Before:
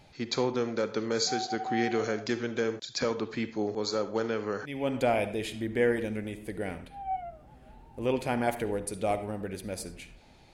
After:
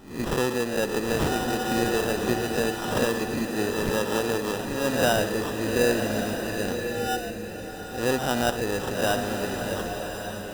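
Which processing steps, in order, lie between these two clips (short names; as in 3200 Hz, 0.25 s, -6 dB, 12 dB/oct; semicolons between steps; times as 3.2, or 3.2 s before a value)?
spectral swells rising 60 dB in 0.51 s; sample-rate reducer 2200 Hz, jitter 0%; bloom reverb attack 1.17 s, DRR 4.5 dB; gain +2.5 dB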